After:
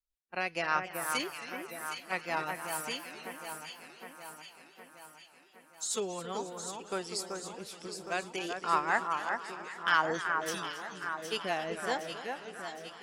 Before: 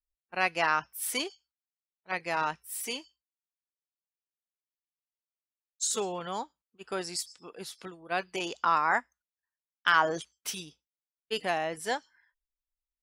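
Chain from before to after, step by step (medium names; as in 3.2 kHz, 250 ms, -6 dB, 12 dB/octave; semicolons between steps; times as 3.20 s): rotary cabinet horn 5 Hz; echo whose repeats swap between lows and highs 382 ms, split 2.1 kHz, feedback 75%, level -5 dB; modulated delay 270 ms, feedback 64%, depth 147 cents, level -14 dB; trim -1 dB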